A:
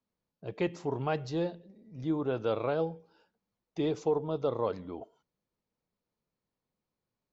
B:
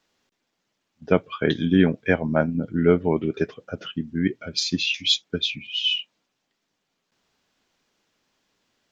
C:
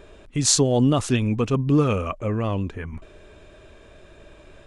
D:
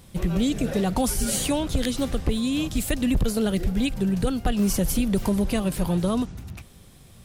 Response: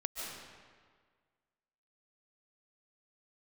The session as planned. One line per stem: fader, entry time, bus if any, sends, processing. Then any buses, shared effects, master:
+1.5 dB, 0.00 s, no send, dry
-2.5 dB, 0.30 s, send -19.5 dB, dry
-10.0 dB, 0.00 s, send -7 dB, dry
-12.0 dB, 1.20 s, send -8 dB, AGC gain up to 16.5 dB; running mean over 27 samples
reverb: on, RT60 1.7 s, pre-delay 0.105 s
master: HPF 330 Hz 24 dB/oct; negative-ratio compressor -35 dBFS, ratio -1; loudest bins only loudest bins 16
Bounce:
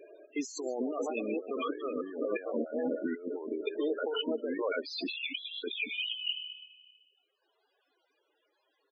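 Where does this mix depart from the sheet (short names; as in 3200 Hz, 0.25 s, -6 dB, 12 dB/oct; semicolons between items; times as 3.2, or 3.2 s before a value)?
stem A +1.5 dB -> -5.0 dB; stem D: muted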